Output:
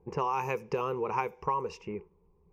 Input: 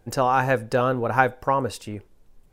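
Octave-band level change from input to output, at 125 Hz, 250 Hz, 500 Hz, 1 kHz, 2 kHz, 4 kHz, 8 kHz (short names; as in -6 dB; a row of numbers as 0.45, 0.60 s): -13.0 dB, -11.5 dB, -9.5 dB, -9.0 dB, -15.5 dB, -12.0 dB, under -15 dB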